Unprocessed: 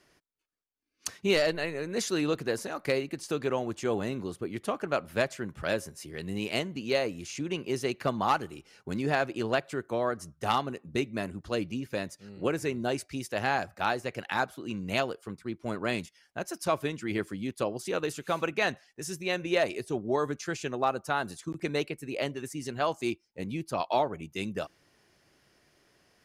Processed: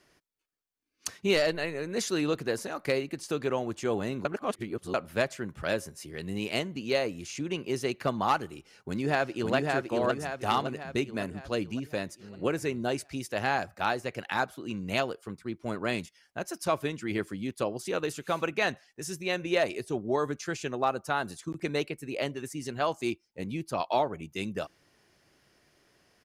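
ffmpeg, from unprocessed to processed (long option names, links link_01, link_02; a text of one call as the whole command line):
ffmpeg -i in.wav -filter_complex "[0:a]asplit=2[link_01][link_02];[link_02]afade=type=in:start_time=8.52:duration=0.01,afade=type=out:start_time=9.55:duration=0.01,aecho=0:1:560|1120|1680|2240|2800|3360|3920:0.749894|0.374947|0.187474|0.0937368|0.0468684|0.0234342|0.0117171[link_03];[link_01][link_03]amix=inputs=2:normalize=0,asplit=3[link_04][link_05][link_06];[link_04]atrim=end=4.252[link_07];[link_05]atrim=start=4.248:end=4.942,asetpts=PTS-STARTPTS,areverse[link_08];[link_06]atrim=start=4.938[link_09];[link_07][link_08]acrossfade=duration=0.004:curve1=hsin:curve2=hsin[link_10];[link_10][link_09]acrossfade=duration=0.004:curve1=hsin:curve2=hsin" out.wav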